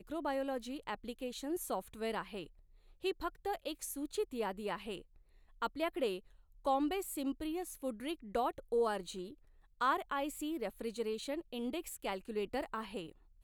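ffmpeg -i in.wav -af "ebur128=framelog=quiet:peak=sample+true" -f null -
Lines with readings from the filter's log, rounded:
Integrated loudness:
  I:         -39.0 LUFS
  Threshold: -49.2 LUFS
Loudness range:
  LRA:         3.6 LU
  Threshold: -59.1 LUFS
  LRA low:   -41.2 LUFS
  LRA high:  -37.6 LUFS
Sample peak:
  Peak:      -21.5 dBFS
True peak:
  Peak:      -21.5 dBFS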